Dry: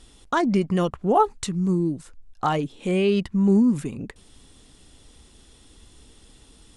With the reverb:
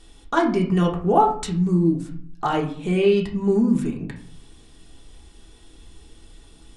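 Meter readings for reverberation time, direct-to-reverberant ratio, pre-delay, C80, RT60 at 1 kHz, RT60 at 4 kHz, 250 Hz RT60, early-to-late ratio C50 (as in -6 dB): 0.50 s, -1.0 dB, 3 ms, 13.5 dB, 0.50 s, 0.35 s, 0.75 s, 9.0 dB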